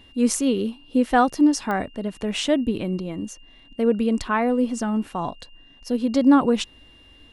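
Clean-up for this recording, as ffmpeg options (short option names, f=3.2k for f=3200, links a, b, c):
-af "adeclick=t=4,bandreject=f=2.8k:w=30"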